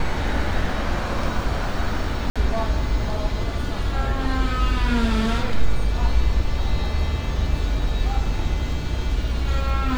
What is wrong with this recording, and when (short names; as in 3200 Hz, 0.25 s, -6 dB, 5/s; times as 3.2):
2.3–2.36 gap 56 ms